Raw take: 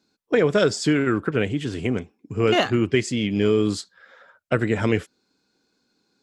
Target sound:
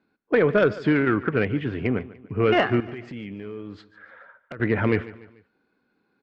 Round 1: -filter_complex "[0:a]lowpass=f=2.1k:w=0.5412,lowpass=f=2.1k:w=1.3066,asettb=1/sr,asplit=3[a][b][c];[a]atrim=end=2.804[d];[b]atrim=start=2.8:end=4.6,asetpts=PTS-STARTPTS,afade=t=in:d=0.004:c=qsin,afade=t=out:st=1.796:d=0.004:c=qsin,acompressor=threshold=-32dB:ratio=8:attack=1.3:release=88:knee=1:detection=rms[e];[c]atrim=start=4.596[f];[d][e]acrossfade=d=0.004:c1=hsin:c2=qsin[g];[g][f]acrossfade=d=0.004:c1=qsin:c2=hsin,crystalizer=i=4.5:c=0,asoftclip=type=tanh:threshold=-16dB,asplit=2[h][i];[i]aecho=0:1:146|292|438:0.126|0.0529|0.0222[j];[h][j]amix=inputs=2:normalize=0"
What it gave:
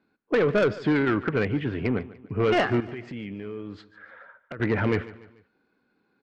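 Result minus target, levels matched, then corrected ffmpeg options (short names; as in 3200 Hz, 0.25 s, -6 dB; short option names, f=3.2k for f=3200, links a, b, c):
soft clip: distortion +10 dB
-filter_complex "[0:a]lowpass=f=2.1k:w=0.5412,lowpass=f=2.1k:w=1.3066,asettb=1/sr,asplit=3[a][b][c];[a]atrim=end=2.804[d];[b]atrim=start=2.8:end=4.6,asetpts=PTS-STARTPTS,afade=t=in:d=0.004:c=qsin,afade=t=out:st=1.796:d=0.004:c=qsin,acompressor=threshold=-32dB:ratio=8:attack=1.3:release=88:knee=1:detection=rms[e];[c]atrim=start=4.596[f];[d][e]acrossfade=d=0.004:c1=hsin:c2=qsin[g];[g][f]acrossfade=d=0.004:c1=qsin:c2=hsin,crystalizer=i=4.5:c=0,asoftclip=type=tanh:threshold=-8.5dB,asplit=2[h][i];[i]aecho=0:1:146|292|438:0.126|0.0529|0.0222[j];[h][j]amix=inputs=2:normalize=0"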